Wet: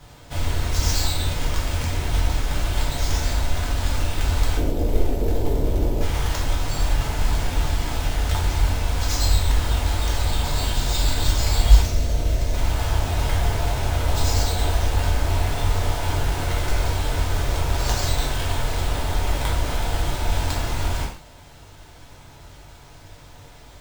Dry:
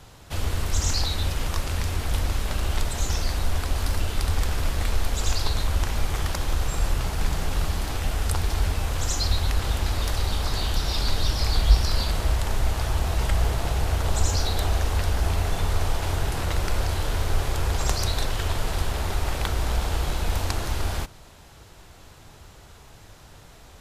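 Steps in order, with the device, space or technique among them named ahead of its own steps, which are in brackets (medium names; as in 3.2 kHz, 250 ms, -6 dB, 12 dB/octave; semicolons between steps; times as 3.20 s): 4.57–6.01 s: FFT filter 120 Hz 0 dB, 420 Hz +13 dB, 2 kHz -25 dB; 11.83–12.53 s: time-frequency box 720–5400 Hz -14 dB; early companding sampler (sample-rate reducer 12 kHz, jitter 0%; companded quantiser 6-bit); gated-style reverb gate 170 ms falling, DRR -4 dB; trim -3 dB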